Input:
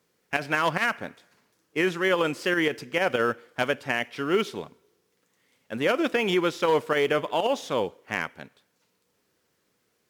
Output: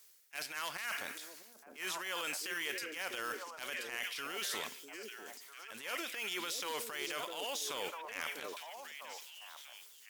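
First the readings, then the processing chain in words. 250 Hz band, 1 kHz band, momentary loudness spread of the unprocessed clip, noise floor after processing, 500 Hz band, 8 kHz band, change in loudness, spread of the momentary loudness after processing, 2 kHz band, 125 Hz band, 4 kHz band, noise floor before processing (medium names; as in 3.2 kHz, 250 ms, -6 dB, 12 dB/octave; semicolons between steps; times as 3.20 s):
-22.5 dB, -14.0 dB, 9 LU, -59 dBFS, -20.0 dB, +2.5 dB, -14.0 dB, 12 LU, -11.5 dB, -27.0 dB, -6.0 dB, -73 dBFS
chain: differentiator; reverse; compression 4:1, threshold -52 dBFS, peak gain reduction 17.5 dB; reverse; repeats whose band climbs or falls 648 ms, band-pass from 320 Hz, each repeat 1.4 oct, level -2 dB; transient shaper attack -10 dB, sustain +6 dB; trim +14.5 dB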